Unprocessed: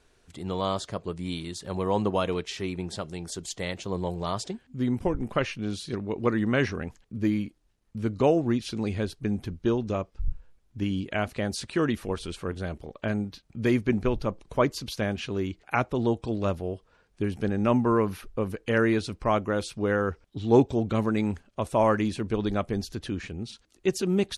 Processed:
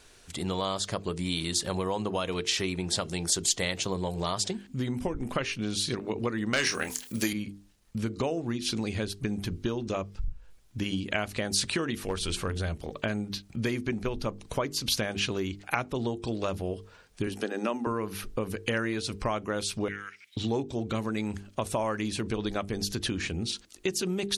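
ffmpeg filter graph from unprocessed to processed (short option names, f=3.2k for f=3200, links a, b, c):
-filter_complex "[0:a]asettb=1/sr,asplit=3[a][b][c];[a]atrim=end=6.534[d];[b]atrim=start=6.53:end=7.33,asetpts=PTS-STARTPTS,afade=t=in:d=0.004:c=qsin,afade=t=out:st=0.796:d=0.004:c=qsin,aemphasis=mode=production:type=riaa,aeval=exprs='0.282*sin(PI/2*1.58*val(0)/0.282)':c=same,asplit=2[e][f];[f]adelay=27,volume=-9dB[g];[e][g]amix=inputs=2:normalize=0,atrim=end_sample=35280[h];[c]atrim=start=7.326[i];[d][h]acrossfade=d=0.004:c1=hsin:c2=qsin[j];[j][i]acrossfade=d=0.004:c1=qsin:c2=hsin,asettb=1/sr,asplit=3[k][l][m];[k]atrim=end=11.984[n];[l]atrim=start=11.98:end=12.75,asetpts=PTS-STARTPTS,afade=t=in:d=0.004:c=qsin,afade=t=out:st=0.766:d=0.004:c=qsin,bandreject=f=60:t=h:w=6,bandreject=f=120:t=h:w=6,bandreject=f=180:t=h:w=6,bandreject=f=240:t=h:w=6,bandreject=f=300:t=h:w=6,bandreject=f=360:t=h:w=6,asoftclip=type=hard:threshold=-21dB,asubboost=boost=8:cutoff=140[o];[m]atrim=start=12.746[p];[n][o]acrossfade=d=0.004:c1=hsin:c2=qsin[q];[q][p]acrossfade=d=0.004:c1=qsin:c2=hsin,asettb=1/sr,asplit=3[r][s][t];[r]atrim=end=17.274[u];[s]atrim=start=17.27:end=17.87,asetpts=PTS-STARTPTS,afade=t=in:d=0.004:c=qsin,afade=t=out:st=0.596:d=0.004:c=qsin,highpass=f=240:w=0.5412,highpass=f=240:w=1.3066,bandreject=f=2.2k:w=11[v];[t]atrim=start=17.866[w];[u][v]acrossfade=d=0.004:c1=hsin:c2=qsin[x];[x][w]acrossfade=d=0.004:c1=qsin:c2=hsin,asettb=1/sr,asplit=3[y][z][aa];[y]atrim=end=19.884[ab];[z]atrim=start=19.88:end=20.37,asetpts=PTS-STARTPTS,afade=t=in:d=0.004:c=qsin,afade=t=out:st=0.486:d=0.004:c=qsin,acompressor=threshold=-41dB:ratio=2:attack=3.2:release=140:knee=1:detection=peak,highpass=f=2.2k:t=q:w=7[ac];[aa]atrim=start=20.366[ad];[ab][ac]acrossfade=d=0.004:c1=hsin:c2=qsin[ae];[ae][ad]acrossfade=d=0.004:c1=qsin:c2=hsin,bandreject=f=50:t=h:w=6,bandreject=f=100:t=h:w=6,bandreject=f=150:t=h:w=6,bandreject=f=200:t=h:w=6,bandreject=f=250:t=h:w=6,bandreject=f=300:t=h:w=6,bandreject=f=350:t=h:w=6,bandreject=f=400:t=h:w=6,bandreject=f=450:t=h:w=6,acompressor=threshold=-33dB:ratio=6,highshelf=f=2.3k:g=9,volume=5dB"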